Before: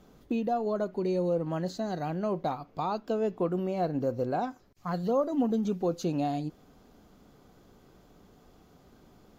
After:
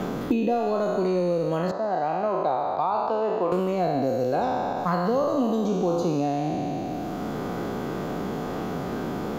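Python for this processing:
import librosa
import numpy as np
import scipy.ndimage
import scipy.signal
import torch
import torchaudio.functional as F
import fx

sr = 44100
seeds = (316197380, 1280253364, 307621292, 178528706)

y = fx.spec_trails(x, sr, decay_s=1.69)
y = fx.bandpass_q(y, sr, hz=840.0, q=1.1, at=(1.71, 3.52))
y = fx.band_squash(y, sr, depth_pct=100)
y = F.gain(torch.from_numpy(y), 2.5).numpy()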